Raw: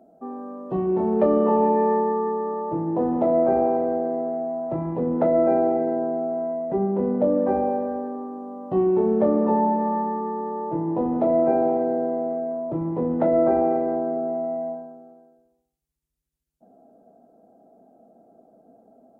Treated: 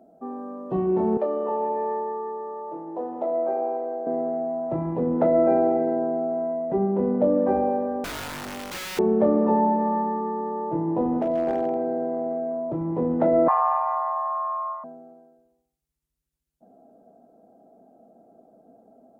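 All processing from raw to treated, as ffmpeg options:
-filter_complex "[0:a]asettb=1/sr,asplit=3[a][b][c];[a]atrim=end=1.174[d];[b]atrim=start=1.17:end=4.07,asetpts=PTS-STARTPTS,afade=t=in:d=0.004:c=qsin,afade=t=out:st=2.896:d=0.004:c=qsin,highpass=560,equalizer=f=2k:w=0.49:g=-8[e];[c]atrim=start=4.066[f];[d][e]acrossfade=d=0.004:c1=hsin:c2=qsin[g];[g][f]acrossfade=d=0.004:c1=qsin:c2=hsin,asettb=1/sr,asplit=3[h][i][j];[h]atrim=end=8.044[k];[i]atrim=start=8.04:end=8.99,asetpts=PTS-STARTPTS,afade=t=in:d=0.004:c=qsin,afade=t=out:st=0.946:d=0.004:c=qsin,acompressor=threshold=-23dB:ratio=16:attack=3.2:release=140:knee=1:detection=peak,aeval=exprs='(mod(29.9*val(0)+1,2)-1)/29.9':c=same,acrusher=bits=7:dc=4:mix=0:aa=0.000001[l];[j]atrim=start=8.986[m];[k][l]acrossfade=d=0.004:c1=hsin:c2=qsin[n];[n][m]acrossfade=d=0.004:c1=qsin:c2=hsin,asettb=1/sr,asplit=3[o][p][q];[o]atrim=end=11.184[r];[p]atrim=start=11.18:end=12.89,asetpts=PTS-STARTPTS,afade=t=in:d=0.004:c=qsin,afade=t=out:st=1.706:d=0.004:c=qsin,asoftclip=type=hard:threshold=-13.5dB,acompressor=threshold=-24dB:ratio=2:attack=3.2:release=140:knee=1:detection=peak[s];[q]atrim=start=12.886[t];[r][s]acrossfade=d=0.004:c1=hsin:c2=qsin[u];[u][t]acrossfade=d=0.004:c1=qsin:c2=hsin,asettb=1/sr,asplit=3[v][w][x];[v]atrim=end=13.484[y];[w]atrim=start=13.48:end=14.84,asetpts=PTS-STARTPTS,afade=t=in:d=0.004:c=qsin,afade=t=out:st=1.356:d=0.004:c=qsin,afreqshift=410,highpass=610,lowpass=2.2k[z];[x]atrim=start=14.836[aa];[y][z]acrossfade=d=0.004:c1=hsin:c2=qsin[ab];[ab][aa]acrossfade=d=0.004:c1=qsin:c2=hsin"

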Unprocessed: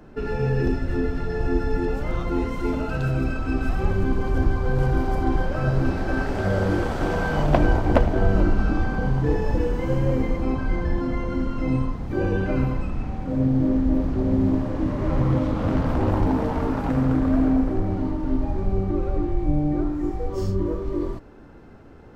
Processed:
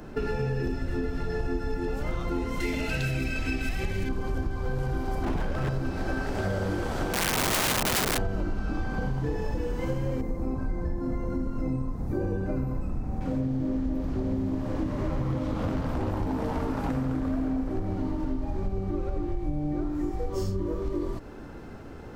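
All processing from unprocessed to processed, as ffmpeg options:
-filter_complex "[0:a]asettb=1/sr,asplit=3[a][b][c];[a]atrim=end=2.604[d];[b]atrim=start=2.6:end=4.09,asetpts=PTS-STARTPTS,afade=t=in:d=0.004:c=qsin,afade=t=out:st=1.486:d=0.004:c=qsin,highshelf=f=1.6k:t=q:w=3:g=7,aeval=exprs='clip(val(0),-1,0.178)':c=same[e];[c]atrim=start=4.086[f];[d][e]acrossfade=d=0.004:c1=hsin:c2=qsin[g];[g][f]acrossfade=d=0.004:c1=qsin:c2=hsin,asettb=1/sr,asplit=3[h][i][j];[h]atrim=end=5.234[k];[i]atrim=start=5.23:end=5.69,asetpts=PTS-STARTPTS,afade=t=in:d=0.004:c=qsin,afade=t=out:st=0.456:d=0.004:c=qsin,bass=f=250:g=4,treble=f=4k:g=-2,aeval=exprs='0.158*(abs(mod(val(0)/0.158+3,4)-2)-1)':c=same[l];[j]atrim=start=5.686[m];[k][l]acrossfade=d=0.004:c1=hsin:c2=qsin[n];[n][m]acrossfade=d=0.004:c1=qsin:c2=hsin,asettb=1/sr,asplit=3[o][p][q];[o]atrim=end=7.134[r];[p]atrim=start=7.13:end=8.18,asetpts=PTS-STARTPTS,afade=t=in:d=0.004:c=qsin,afade=t=out:st=1.046:d=0.004:c=qsin,lowpass=2k,aeval=exprs='(mod(7.94*val(0)+1,2)-1)/7.94':c=same[s];[q]atrim=start=8.176[t];[r][s]acrossfade=d=0.004:c1=hsin:c2=qsin[u];[u][t]acrossfade=d=0.004:c1=qsin:c2=hsin,asettb=1/sr,asplit=3[v][w][x];[v]atrim=end=10.214[y];[w]atrim=start=10.21:end=13.21,asetpts=PTS-STARTPTS,afade=t=in:d=0.004:c=qsin,afade=t=out:st=2.996:d=0.004:c=qsin,equalizer=f=3.1k:w=0.53:g=-13,bandreject=f=3.1k:w=11[z];[x]atrim=start=13.206[aa];[y][z]acrossfade=d=0.004:c1=hsin:c2=qsin[ab];[ab][aa]acrossfade=d=0.004:c1=qsin:c2=hsin,acompressor=threshold=-30dB:ratio=6,highshelf=f=4.4k:g=7.5,volume=4dB"

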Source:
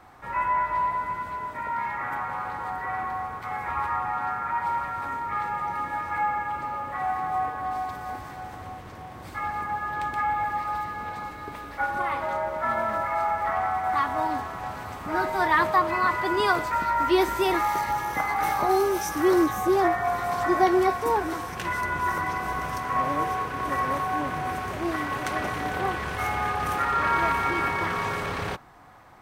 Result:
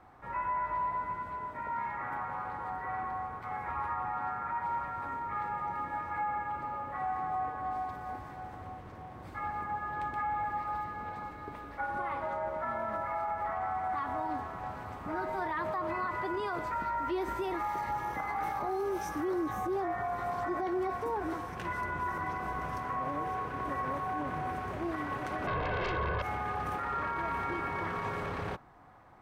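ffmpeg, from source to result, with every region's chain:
-filter_complex "[0:a]asettb=1/sr,asplit=3[a][b][c];[a]atrim=end=25.474[d];[b]atrim=start=25.47:end=26.22,asetpts=PTS-STARTPTS,afade=t=in:d=0.004:c=qsin,afade=t=out:st=0.746:d=0.004:c=qsin,lowpass=f=1.6k:w=0.5412,lowpass=f=1.6k:w=1.3066,aeval=exprs='0.188*sin(PI/2*5.01*val(0)/0.188)':c=same,aecho=1:1:1.9:0.63,atrim=end_sample=33075[e];[c]atrim=start=26.216[f];[d][e]acrossfade=d=0.004:c1=hsin:c2=qsin[g];[g][f]acrossfade=d=0.004:c1=qsin:c2=hsin,highshelf=f=2.5k:g=-11.5,alimiter=limit=-21.5dB:level=0:latency=1:release=57,volume=-4.5dB"

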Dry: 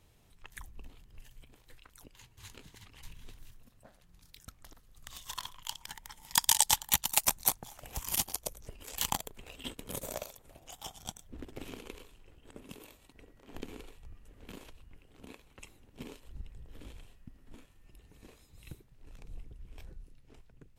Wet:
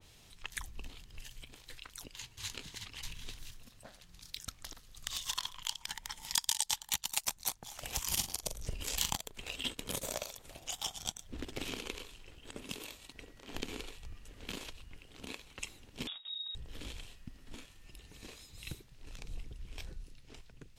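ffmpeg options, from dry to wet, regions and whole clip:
-filter_complex "[0:a]asettb=1/sr,asplit=3[a][b][c];[a]atrim=end=8.094[d];[b]atrim=start=8.09:end=9.16,asetpts=PTS-STARTPTS,afade=t=in:d=0.004:c=qsin,afade=t=out:st=1.066:d=0.004:c=qsin,lowshelf=f=240:g=9.5,asplit=2[e][f];[f]adelay=43,volume=-9dB[g];[e][g]amix=inputs=2:normalize=0,atrim=end_sample=47187[h];[c]atrim=start=9.156[i];[d][h]acrossfade=d=0.004:c1=hsin:c2=qsin[j];[j][i]acrossfade=d=0.004:c1=qsin:c2=hsin,asettb=1/sr,asplit=3[k][l][m];[k]atrim=end=16.074[n];[l]atrim=start=16.07:end=16.55,asetpts=PTS-STARTPTS,afade=t=in:d=0.004:c=qsin,afade=t=out:st=0.476:d=0.004:c=qsin,agate=range=-16dB:threshold=-54dB:ratio=16:release=100:detection=peak,acompressor=threshold=-50dB:ratio=5:attack=3.2:release=140:knee=1:detection=peak,lowpass=f=3.2k:t=q:w=0.5098,lowpass=f=3.2k:t=q:w=0.6013,lowpass=f=3.2k:t=q:w=0.9,lowpass=f=3.2k:t=q:w=2.563,afreqshift=-3800[o];[m]atrim=start=16.546[p];[n][o]acrossfade=d=0.004:c1=hsin:c2=qsin[q];[q][p]acrossfade=d=0.004:c1=qsin:c2=hsin,equalizer=f=4.6k:w=0.49:g=11,acompressor=threshold=-36dB:ratio=2.5,adynamicequalizer=threshold=0.00316:dfrequency=2300:dqfactor=0.7:tfrequency=2300:tqfactor=0.7:attack=5:release=100:ratio=0.375:range=2:mode=cutabove:tftype=highshelf,volume=2.5dB"

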